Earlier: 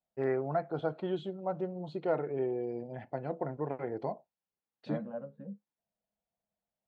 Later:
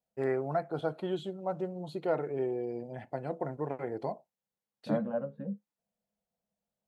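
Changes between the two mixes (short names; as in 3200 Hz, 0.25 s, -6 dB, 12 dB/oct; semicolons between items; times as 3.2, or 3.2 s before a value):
second voice +6.5 dB; master: remove air absorption 140 m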